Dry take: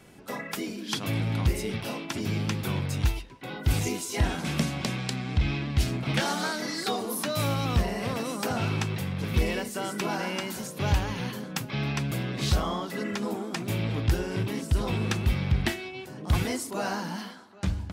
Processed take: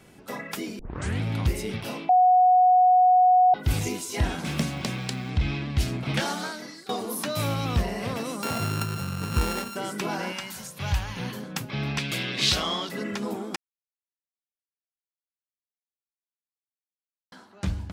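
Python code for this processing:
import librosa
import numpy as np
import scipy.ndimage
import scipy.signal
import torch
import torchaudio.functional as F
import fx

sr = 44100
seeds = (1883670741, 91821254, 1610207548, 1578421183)

y = fx.quant_float(x, sr, bits=4, at=(4.45, 5.3))
y = fx.sample_sort(y, sr, block=32, at=(8.42, 9.75), fade=0.02)
y = fx.peak_eq(y, sr, hz=340.0, db=-13.5, octaves=1.6, at=(10.32, 11.17))
y = fx.weighting(y, sr, curve='D', at=(11.98, 12.89))
y = fx.edit(y, sr, fx.tape_start(start_s=0.79, length_s=0.42),
    fx.bleep(start_s=2.09, length_s=1.45, hz=733.0, db=-14.0),
    fx.fade_out_to(start_s=6.23, length_s=0.66, floor_db=-20.0),
    fx.silence(start_s=13.56, length_s=3.76), tone=tone)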